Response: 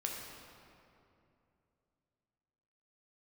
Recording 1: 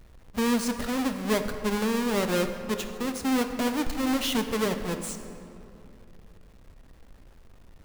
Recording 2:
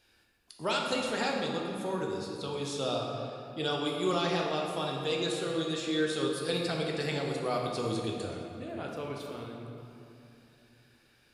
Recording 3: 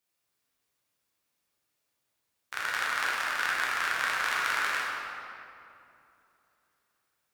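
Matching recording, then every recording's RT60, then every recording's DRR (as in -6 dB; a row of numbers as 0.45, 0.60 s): 2; 2.7, 2.7, 2.7 s; 6.5, -1.0, -5.5 dB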